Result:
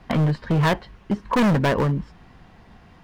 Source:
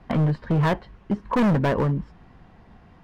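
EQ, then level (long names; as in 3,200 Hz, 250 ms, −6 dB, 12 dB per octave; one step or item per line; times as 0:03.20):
high-shelf EQ 2,200 Hz +8.5 dB
+1.0 dB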